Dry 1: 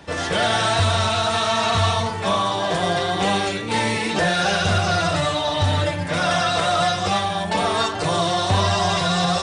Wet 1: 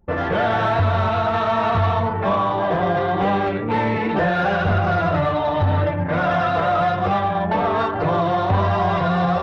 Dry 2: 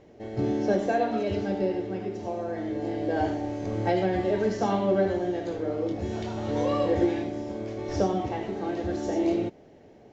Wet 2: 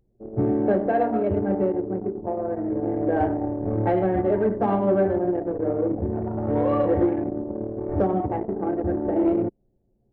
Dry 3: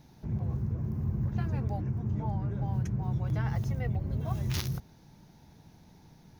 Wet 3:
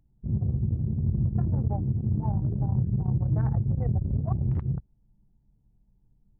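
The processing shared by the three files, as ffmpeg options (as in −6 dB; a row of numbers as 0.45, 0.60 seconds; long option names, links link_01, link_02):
-filter_complex "[0:a]lowpass=1600,anlmdn=25.1,asplit=2[link_01][link_02];[link_02]alimiter=limit=-18dB:level=0:latency=1:release=278,volume=2.5dB[link_03];[link_01][link_03]amix=inputs=2:normalize=0,acontrast=68,volume=-8dB"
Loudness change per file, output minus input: +0.5, +4.0, +5.0 LU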